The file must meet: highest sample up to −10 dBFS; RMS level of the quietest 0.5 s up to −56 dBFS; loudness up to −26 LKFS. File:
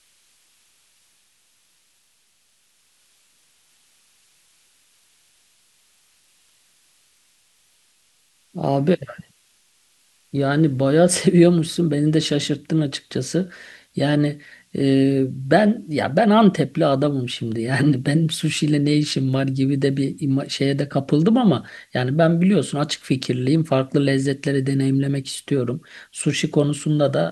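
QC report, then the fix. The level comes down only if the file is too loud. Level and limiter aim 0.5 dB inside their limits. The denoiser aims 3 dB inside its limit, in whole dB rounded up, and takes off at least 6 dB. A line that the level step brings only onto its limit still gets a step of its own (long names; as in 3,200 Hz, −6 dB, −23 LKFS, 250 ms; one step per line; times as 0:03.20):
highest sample −2.0 dBFS: out of spec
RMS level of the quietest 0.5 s −62 dBFS: in spec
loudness −20.0 LKFS: out of spec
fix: level −6.5 dB
brickwall limiter −10.5 dBFS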